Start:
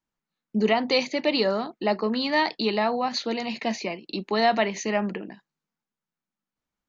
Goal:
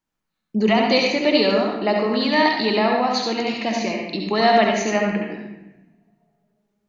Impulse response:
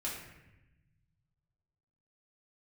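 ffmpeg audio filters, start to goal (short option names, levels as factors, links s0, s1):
-filter_complex "[0:a]asplit=2[s0][s1];[1:a]atrim=start_sample=2205,adelay=67[s2];[s1][s2]afir=irnorm=-1:irlink=0,volume=0.75[s3];[s0][s3]amix=inputs=2:normalize=0,volume=1.41"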